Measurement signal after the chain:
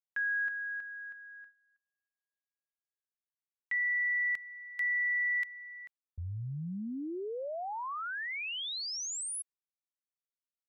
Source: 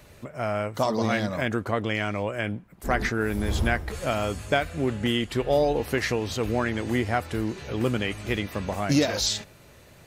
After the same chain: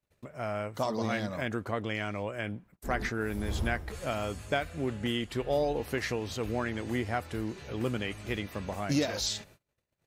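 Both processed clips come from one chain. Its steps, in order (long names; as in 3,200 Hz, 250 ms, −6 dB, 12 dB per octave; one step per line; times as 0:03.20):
noise gate −47 dBFS, range −32 dB
level −6.5 dB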